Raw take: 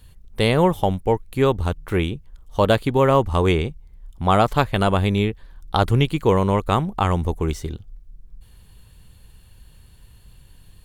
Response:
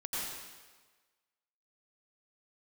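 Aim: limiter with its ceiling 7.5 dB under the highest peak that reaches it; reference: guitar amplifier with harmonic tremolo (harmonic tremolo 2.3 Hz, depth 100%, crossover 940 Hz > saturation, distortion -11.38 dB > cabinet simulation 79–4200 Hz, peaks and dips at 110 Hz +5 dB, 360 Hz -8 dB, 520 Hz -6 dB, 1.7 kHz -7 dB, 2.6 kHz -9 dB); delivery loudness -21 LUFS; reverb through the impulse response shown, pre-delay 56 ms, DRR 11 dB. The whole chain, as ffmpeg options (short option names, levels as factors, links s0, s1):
-filter_complex "[0:a]alimiter=limit=0.335:level=0:latency=1,asplit=2[s0][s1];[1:a]atrim=start_sample=2205,adelay=56[s2];[s1][s2]afir=irnorm=-1:irlink=0,volume=0.178[s3];[s0][s3]amix=inputs=2:normalize=0,acrossover=split=940[s4][s5];[s4]aeval=exprs='val(0)*(1-1/2+1/2*cos(2*PI*2.3*n/s))':c=same[s6];[s5]aeval=exprs='val(0)*(1-1/2-1/2*cos(2*PI*2.3*n/s))':c=same[s7];[s6][s7]amix=inputs=2:normalize=0,asoftclip=threshold=0.1,highpass=79,equalizer=f=110:t=q:w=4:g=5,equalizer=f=360:t=q:w=4:g=-8,equalizer=f=520:t=q:w=4:g=-6,equalizer=f=1700:t=q:w=4:g=-7,equalizer=f=2600:t=q:w=4:g=-9,lowpass=f=4200:w=0.5412,lowpass=f=4200:w=1.3066,volume=3.35"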